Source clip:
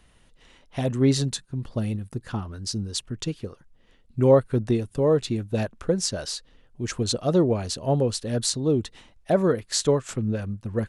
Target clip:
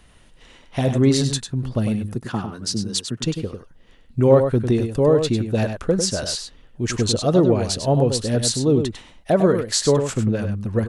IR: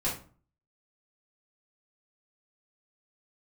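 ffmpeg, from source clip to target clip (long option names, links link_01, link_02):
-filter_complex "[0:a]asplit=2[link_01][link_02];[link_02]alimiter=limit=-17.5dB:level=0:latency=1:release=132,volume=-0.5dB[link_03];[link_01][link_03]amix=inputs=2:normalize=0,asettb=1/sr,asplit=3[link_04][link_05][link_06];[link_04]atrim=end=2.154[link_07];[link_05]atrim=start=2.15:end=3.23,asetpts=PTS-STARTPTS,afade=type=in:duration=0.004:curve=qsin,afade=type=out:start_time=1.076:duration=0.004:curve=qsin,highpass=frequency=120:width=0.5412,highpass=frequency=120:width=1.3066[link_08];[link_06]atrim=start=3.226[link_09];[link_07][link_08]acrossfade=duration=0.004:curve1=hsin:curve2=qsin[link_10];[link_10][link_09]acrossfade=duration=0.004:curve1=qsin:curve2=hsin,asplit=2[link_11][link_12];[link_12]adelay=99.13,volume=-7dB,highshelf=frequency=4000:gain=-2.23[link_13];[link_11][link_13]amix=inputs=2:normalize=0"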